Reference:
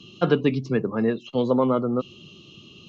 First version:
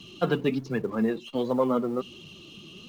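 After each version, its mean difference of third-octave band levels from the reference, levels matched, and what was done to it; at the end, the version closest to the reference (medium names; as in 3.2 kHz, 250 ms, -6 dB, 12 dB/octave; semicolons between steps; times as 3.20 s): 4.5 dB: companding laws mixed up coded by mu; flange 1.3 Hz, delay 0.9 ms, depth 5.4 ms, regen +42%; peaking EQ 120 Hz -6 dB 0.21 oct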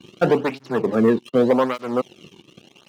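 6.5 dB: treble shelf 3.3 kHz -11 dB; waveshaping leveller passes 3; cancelling through-zero flanger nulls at 0.84 Hz, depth 1.6 ms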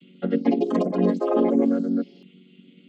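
8.5 dB: vocoder on a held chord major triad, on F#3; static phaser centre 2.4 kHz, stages 4; ever faster or slower copies 302 ms, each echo +7 st, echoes 2; trim +1.5 dB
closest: first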